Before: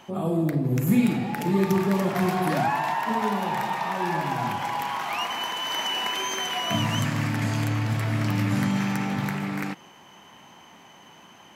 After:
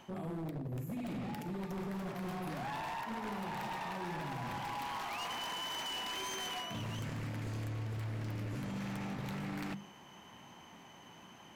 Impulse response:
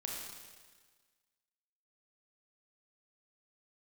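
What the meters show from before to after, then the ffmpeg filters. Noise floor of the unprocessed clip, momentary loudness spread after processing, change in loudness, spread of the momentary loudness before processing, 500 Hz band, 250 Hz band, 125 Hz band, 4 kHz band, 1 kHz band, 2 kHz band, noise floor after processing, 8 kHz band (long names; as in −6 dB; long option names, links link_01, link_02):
−51 dBFS, 17 LU, −14.5 dB, 6 LU, −15.5 dB, −16.0 dB, −14.0 dB, −12.0 dB, −14.0 dB, −14.0 dB, −56 dBFS, −12.0 dB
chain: -af "lowshelf=frequency=190:gain=9,bandreject=frequency=50:width_type=h:width=6,bandreject=frequency=100:width_type=h:width=6,bandreject=frequency=150:width_type=h:width=6,bandreject=frequency=200:width_type=h:width=6,areverse,acompressor=threshold=-28dB:ratio=12,areverse,aeval=exprs='0.0398*(abs(mod(val(0)/0.0398+3,4)-2)-1)':channel_layout=same,volume=-6.5dB"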